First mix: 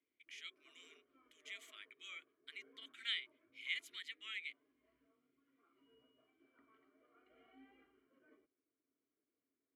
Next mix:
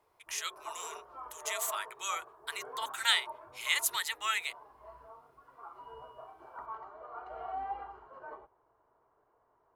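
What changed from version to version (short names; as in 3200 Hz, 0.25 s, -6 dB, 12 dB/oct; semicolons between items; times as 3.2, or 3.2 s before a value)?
master: remove vowel filter i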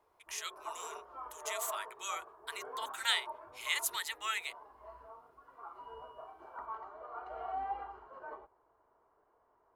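speech -4.0 dB; master: add bell 130 Hz -7 dB 0.53 oct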